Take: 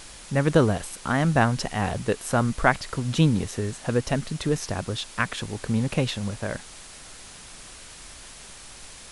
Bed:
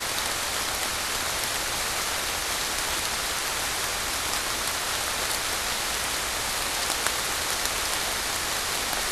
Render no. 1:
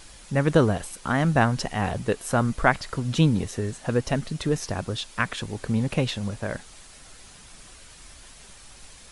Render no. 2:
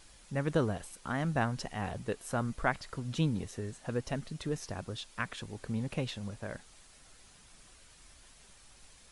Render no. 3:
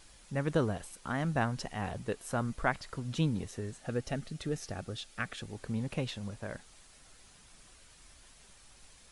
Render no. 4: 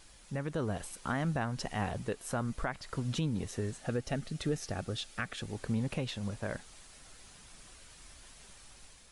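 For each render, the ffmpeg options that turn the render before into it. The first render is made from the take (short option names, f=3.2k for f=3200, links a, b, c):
-af "afftdn=nr=6:nf=-45"
-af "volume=-10.5dB"
-filter_complex "[0:a]asettb=1/sr,asplit=3[a][b][c];[a]atrim=end=3.804[d];[b]atrim=start=3.8:end=5.49,asetpts=PTS-STARTPTS,afade=t=in:d=0.004:c=qsin,afade=t=out:st=1.686:d=0.004:c=qsin,asuperstop=centerf=1000:order=4:qfactor=5.2[e];[c]atrim=start=5.486[f];[d][e]acrossfade=d=0.004:c1=hsin:c2=qsin[g];[g][f]acrossfade=d=0.004:c1=qsin:c2=hsin"
-af "alimiter=level_in=1.5dB:limit=-24dB:level=0:latency=1:release=287,volume=-1.5dB,dynaudnorm=f=200:g=5:m=3.5dB"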